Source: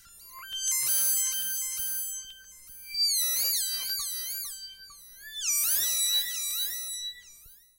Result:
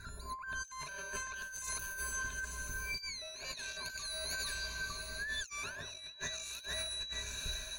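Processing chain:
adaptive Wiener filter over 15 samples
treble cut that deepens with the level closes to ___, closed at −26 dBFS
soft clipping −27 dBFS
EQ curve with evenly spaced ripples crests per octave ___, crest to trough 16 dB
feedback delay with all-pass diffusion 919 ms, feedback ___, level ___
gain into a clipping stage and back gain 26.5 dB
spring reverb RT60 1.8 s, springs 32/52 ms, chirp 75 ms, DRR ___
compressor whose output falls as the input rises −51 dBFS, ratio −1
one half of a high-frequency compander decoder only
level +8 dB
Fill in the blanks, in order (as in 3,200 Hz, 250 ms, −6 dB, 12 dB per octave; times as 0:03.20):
1,900 Hz, 1.5, 43%, −15.5 dB, 14 dB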